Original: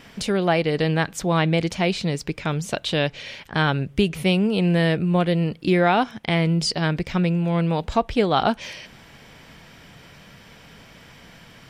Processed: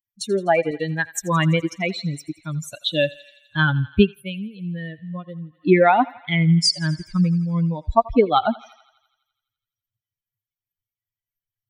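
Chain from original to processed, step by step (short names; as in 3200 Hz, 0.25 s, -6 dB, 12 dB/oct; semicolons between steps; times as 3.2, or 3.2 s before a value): per-bin expansion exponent 3; 0.71–1.19 low shelf 230 Hz -9 dB; thinning echo 84 ms, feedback 70%, high-pass 720 Hz, level -19 dB; 4.02–5.67 dip -14 dB, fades 0.16 s; gain +8.5 dB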